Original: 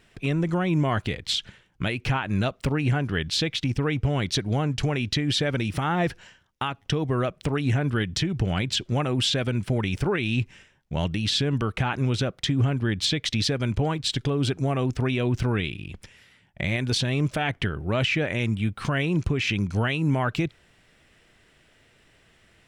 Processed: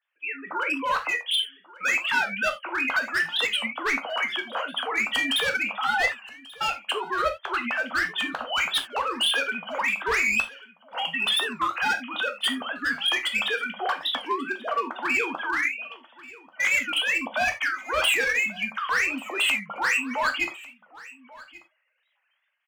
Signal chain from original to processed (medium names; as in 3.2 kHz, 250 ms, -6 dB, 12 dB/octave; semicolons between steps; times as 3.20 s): formants replaced by sine waves; spectral noise reduction 11 dB; gate -53 dBFS, range -6 dB; high-pass 1.1 kHz 12 dB/octave; level rider gain up to 8.5 dB; hard clipper -21.5 dBFS, distortion -10 dB; on a send: delay 1137 ms -20.5 dB; on the sum: gated-style reverb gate 110 ms falling, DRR 3.5 dB; warped record 45 rpm, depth 160 cents